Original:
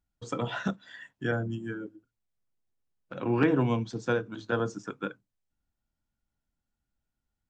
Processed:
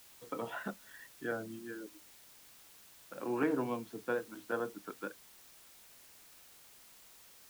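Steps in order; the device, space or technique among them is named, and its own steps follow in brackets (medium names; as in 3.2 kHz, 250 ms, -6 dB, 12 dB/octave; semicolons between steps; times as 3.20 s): wax cylinder (band-pass 270–2200 Hz; wow and flutter; white noise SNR 17 dB); trim -6 dB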